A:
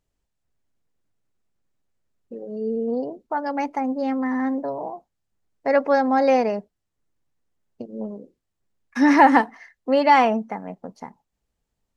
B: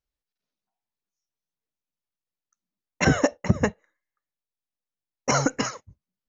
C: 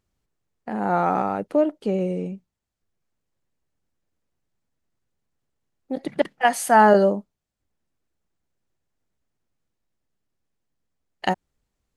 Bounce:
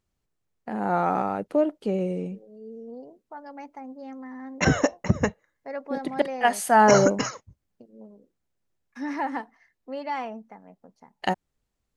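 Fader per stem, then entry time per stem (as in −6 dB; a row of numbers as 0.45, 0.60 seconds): −15.5, −1.0, −2.5 decibels; 0.00, 1.60, 0.00 seconds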